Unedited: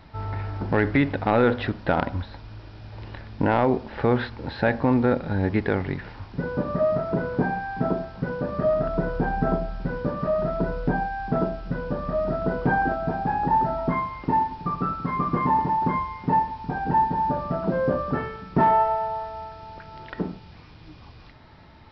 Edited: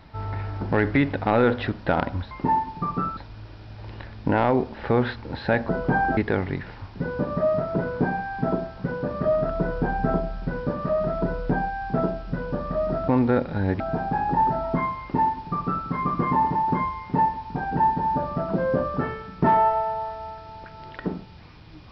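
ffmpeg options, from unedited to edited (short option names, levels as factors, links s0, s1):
-filter_complex "[0:a]asplit=7[s0][s1][s2][s3][s4][s5][s6];[s0]atrim=end=2.312[s7];[s1]atrim=start=14.148:end=15.012[s8];[s2]atrim=start=2.308:end=4.832[s9];[s3]atrim=start=12.458:end=12.942[s10];[s4]atrim=start=5.548:end=12.462[s11];[s5]atrim=start=4.828:end=5.552[s12];[s6]atrim=start=12.938[s13];[s7][s8]acrossfade=d=0.004:c1=hsin:c2=hsin[s14];[s14][s9]acrossfade=d=0.004:c1=hsin:c2=hsin[s15];[s15][s10]acrossfade=d=0.004:c1=hsin:c2=hsin[s16];[s16][s11]acrossfade=d=0.004:c1=hsin:c2=hsin[s17];[s17][s12]acrossfade=d=0.004:c1=hsin:c2=hsin[s18];[s18][s13]acrossfade=d=0.004:c1=hsin:c2=hsin"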